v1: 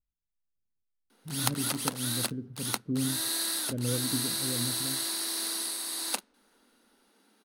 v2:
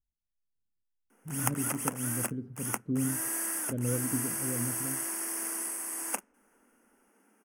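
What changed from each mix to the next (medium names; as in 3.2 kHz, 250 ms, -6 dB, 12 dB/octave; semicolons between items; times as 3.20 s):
background: add Butterworth band-stop 4 kHz, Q 1.1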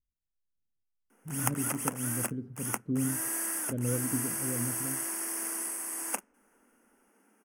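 no change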